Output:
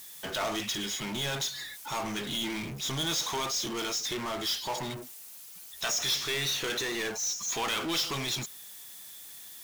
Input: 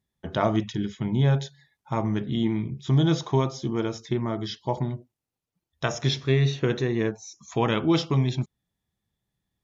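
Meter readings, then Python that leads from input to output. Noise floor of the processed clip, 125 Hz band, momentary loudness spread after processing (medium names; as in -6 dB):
-47 dBFS, -18.0 dB, 15 LU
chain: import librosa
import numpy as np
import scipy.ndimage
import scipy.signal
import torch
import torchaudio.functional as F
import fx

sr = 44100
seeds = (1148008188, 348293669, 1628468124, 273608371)

y = np.diff(x, prepend=0.0)
y = fx.power_curve(y, sr, exponent=0.35)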